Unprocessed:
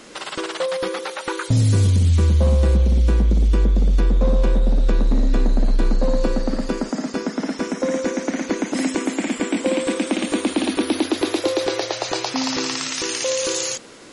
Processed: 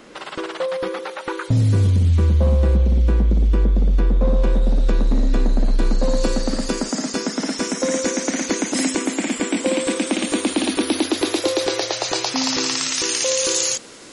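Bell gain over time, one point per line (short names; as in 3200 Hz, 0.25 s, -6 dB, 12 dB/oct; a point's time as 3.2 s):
bell 8500 Hz 2.3 oct
4.21 s -9 dB
4.64 s +1 dB
5.7 s +1 dB
6.3 s +12.5 dB
8.58 s +12.5 dB
9.06 s +5.5 dB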